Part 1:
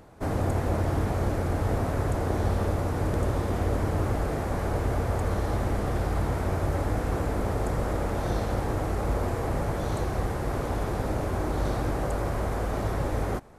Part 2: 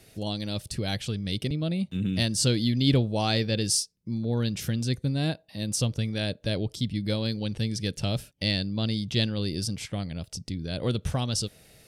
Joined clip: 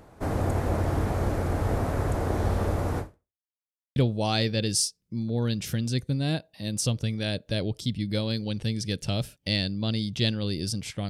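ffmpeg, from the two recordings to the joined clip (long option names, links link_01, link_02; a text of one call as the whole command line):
ffmpeg -i cue0.wav -i cue1.wav -filter_complex "[0:a]apad=whole_dur=11.09,atrim=end=11.09,asplit=2[link_01][link_02];[link_01]atrim=end=3.41,asetpts=PTS-STARTPTS,afade=type=out:start_time=2.99:duration=0.42:curve=exp[link_03];[link_02]atrim=start=3.41:end=3.96,asetpts=PTS-STARTPTS,volume=0[link_04];[1:a]atrim=start=2.91:end=10.04,asetpts=PTS-STARTPTS,afade=type=in:duration=0.004:curve=hsin[link_05];[link_03][link_04][link_05]concat=n=3:v=0:a=1" out.wav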